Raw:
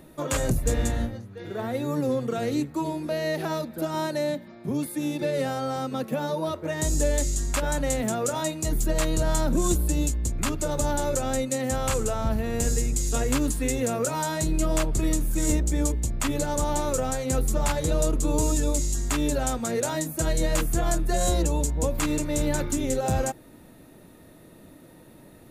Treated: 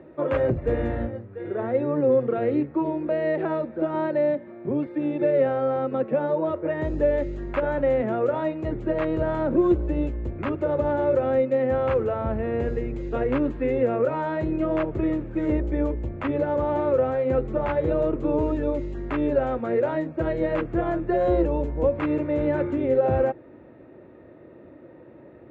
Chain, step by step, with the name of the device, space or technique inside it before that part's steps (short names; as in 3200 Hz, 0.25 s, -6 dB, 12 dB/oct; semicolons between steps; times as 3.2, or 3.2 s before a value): bass cabinet (speaker cabinet 60–2300 Hz, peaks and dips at 180 Hz -6 dB, 360 Hz +8 dB, 540 Hz +8 dB)